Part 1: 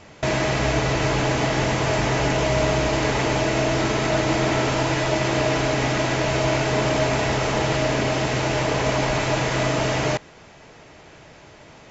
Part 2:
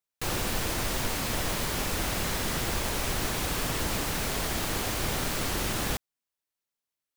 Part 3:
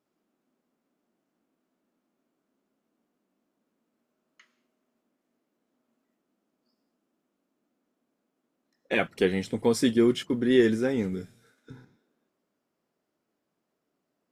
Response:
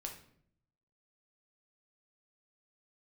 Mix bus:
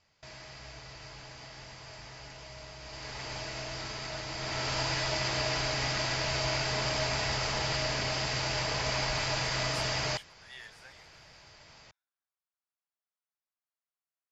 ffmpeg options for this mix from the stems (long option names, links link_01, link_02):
-filter_complex "[0:a]equalizer=frequency=4800:width=5.3:gain=12.5,volume=-6.5dB,afade=type=in:start_time=2.78:duration=0.58:silence=0.354813,afade=type=in:start_time=4.34:duration=0.45:silence=0.421697[link_01];[2:a]highpass=frequency=740:width=0.5412,highpass=frequency=740:width=1.3066,volume=-14dB[link_02];[link_01][link_02]amix=inputs=2:normalize=0,equalizer=frequency=310:width=0.61:gain=-11.5"